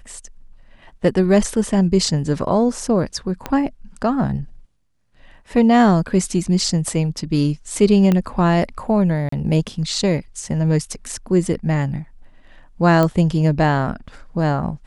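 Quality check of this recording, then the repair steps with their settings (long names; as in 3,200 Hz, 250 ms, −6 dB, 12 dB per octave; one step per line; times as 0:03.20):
0:03.46: click −10 dBFS
0:08.12: click −7 dBFS
0:09.29–0:09.32: drop-out 34 ms
0:13.03: click −6 dBFS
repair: click removal
repair the gap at 0:09.29, 34 ms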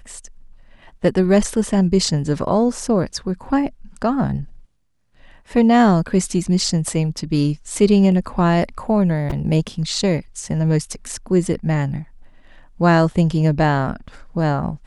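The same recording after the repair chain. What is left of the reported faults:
0:03.46: click
0:08.12: click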